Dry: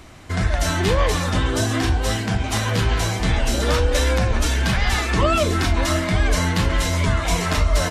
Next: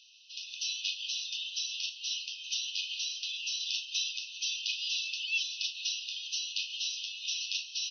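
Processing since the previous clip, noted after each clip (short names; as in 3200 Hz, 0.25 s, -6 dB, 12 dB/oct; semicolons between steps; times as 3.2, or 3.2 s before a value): FFT band-pass 2500–6200 Hz; gain -3.5 dB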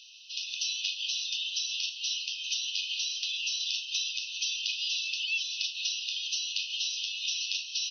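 compressor 3:1, threshold -37 dBFS, peak gain reduction 8 dB; gain +7 dB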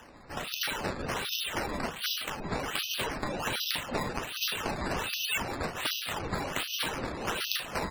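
decimation with a swept rate 10×, swing 100% 1.3 Hz; spectral gate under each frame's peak -25 dB strong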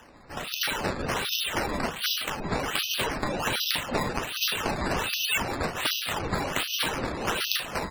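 AGC gain up to 4.5 dB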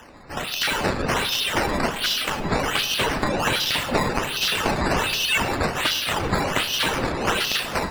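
on a send at -13 dB: reverb RT60 1.2 s, pre-delay 60 ms; on the sum: slew limiter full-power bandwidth 290 Hz; gain +6 dB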